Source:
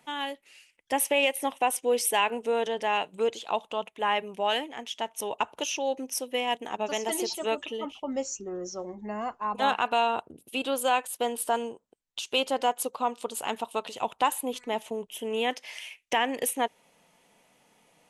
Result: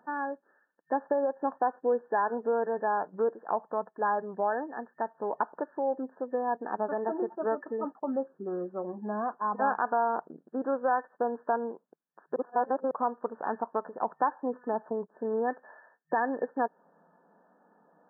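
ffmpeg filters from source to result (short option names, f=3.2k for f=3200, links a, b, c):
-filter_complex "[0:a]asplit=3[a][b][c];[a]atrim=end=12.362[d];[b]atrim=start=12.358:end=12.912,asetpts=PTS-STARTPTS,areverse[e];[c]atrim=start=12.908[f];[d][e]acrossfade=d=0.004:c1=hsin:c2=hsin[g];[g][f]acrossfade=d=0.004:c1=hsin:c2=hsin,afftfilt=real='re*between(b*sr/4096,160,1800)':imag='im*between(b*sr/4096,160,1800)':win_size=4096:overlap=0.75,acompressor=threshold=-31dB:ratio=1.5,volume=2dB"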